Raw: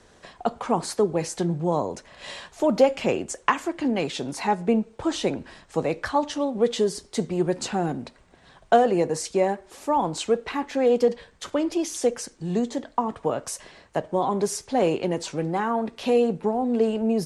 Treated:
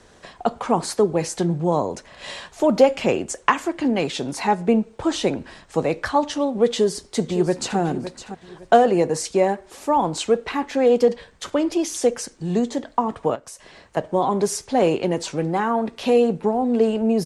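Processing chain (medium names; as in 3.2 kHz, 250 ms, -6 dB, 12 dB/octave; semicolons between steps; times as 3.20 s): 6.70–7.78 s: echo throw 560 ms, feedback 30%, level -12 dB; 13.35–13.97 s: compression 12:1, threshold -39 dBFS, peak gain reduction 15.5 dB; trim +3.5 dB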